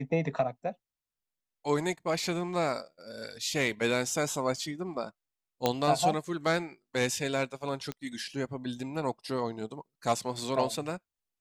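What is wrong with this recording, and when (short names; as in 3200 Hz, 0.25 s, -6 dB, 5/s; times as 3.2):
5.66 pop -11 dBFS
7.92 pop -21 dBFS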